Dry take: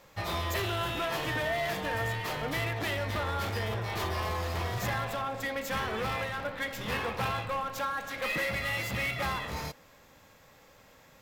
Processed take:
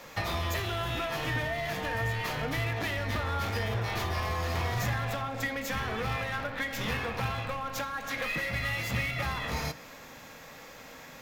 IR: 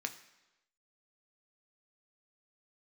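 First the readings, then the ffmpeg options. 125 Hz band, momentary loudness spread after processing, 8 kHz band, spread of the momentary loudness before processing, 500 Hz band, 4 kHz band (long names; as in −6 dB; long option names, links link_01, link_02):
+3.0 dB, 14 LU, +0.5 dB, 4 LU, −1.5 dB, 0.0 dB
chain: -filter_complex "[0:a]acrossover=split=130[link_01][link_02];[link_02]acompressor=threshold=-41dB:ratio=10[link_03];[link_01][link_03]amix=inputs=2:normalize=0,asplit=2[link_04][link_05];[1:a]atrim=start_sample=2205[link_06];[link_05][link_06]afir=irnorm=-1:irlink=0,volume=2.5dB[link_07];[link_04][link_07]amix=inputs=2:normalize=0,volume=3.5dB"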